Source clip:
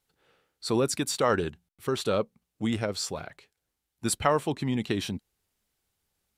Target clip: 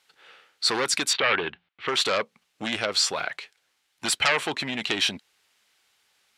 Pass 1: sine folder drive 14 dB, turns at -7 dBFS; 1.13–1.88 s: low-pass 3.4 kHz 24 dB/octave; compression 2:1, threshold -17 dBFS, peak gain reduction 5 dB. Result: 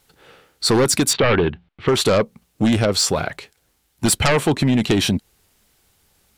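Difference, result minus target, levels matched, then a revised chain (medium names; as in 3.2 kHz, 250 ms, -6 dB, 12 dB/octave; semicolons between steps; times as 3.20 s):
2 kHz band -5.5 dB
sine folder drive 14 dB, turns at -7 dBFS; 1.13–1.88 s: low-pass 3.4 kHz 24 dB/octave; compression 2:1, threshold -17 dBFS, peak gain reduction 5 dB; band-pass filter 2.5 kHz, Q 0.69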